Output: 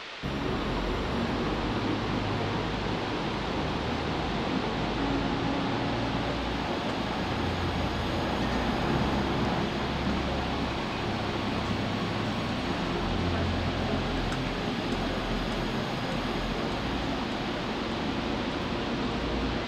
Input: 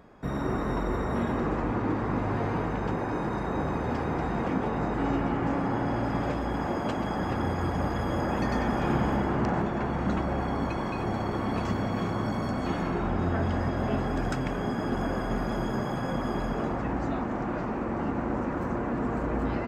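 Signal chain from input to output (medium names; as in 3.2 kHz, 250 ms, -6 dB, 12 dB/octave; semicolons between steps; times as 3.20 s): band noise 310–3900 Hz -39 dBFS; feedback echo behind a high-pass 599 ms, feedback 80%, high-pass 2.4 kHz, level -5 dB; trim -1.5 dB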